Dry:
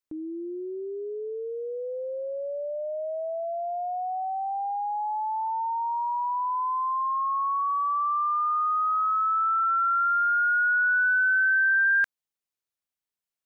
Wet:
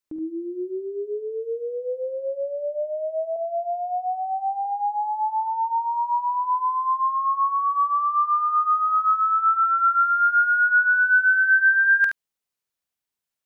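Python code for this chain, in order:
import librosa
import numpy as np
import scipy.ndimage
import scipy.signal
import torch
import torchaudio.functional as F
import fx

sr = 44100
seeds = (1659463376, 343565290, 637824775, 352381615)

y = fx.ellip_highpass(x, sr, hz=190.0, order=4, stop_db=40, at=(3.36, 4.65))
y = fx.room_early_taps(y, sr, ms=(50, 72), db=(-11.5, -6.5))
y = y * 10.0 ** (3.0 / 20.0)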